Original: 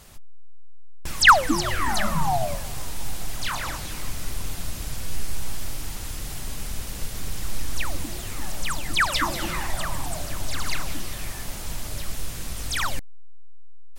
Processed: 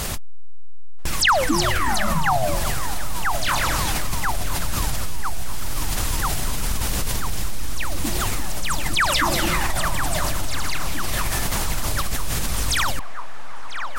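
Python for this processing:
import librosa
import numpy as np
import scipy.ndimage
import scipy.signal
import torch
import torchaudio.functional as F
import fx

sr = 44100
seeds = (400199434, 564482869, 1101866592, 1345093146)

p1 = x + fx.echo_banded(x, sr, ms=989, feedback_pct=75, hz=1100.0, wet_db=-11, dry=0)
p2 = fx.env_flatten(p1, sr, amount_pct=70)
y = p2 * 10.0 ** (-6.0 / 20.0)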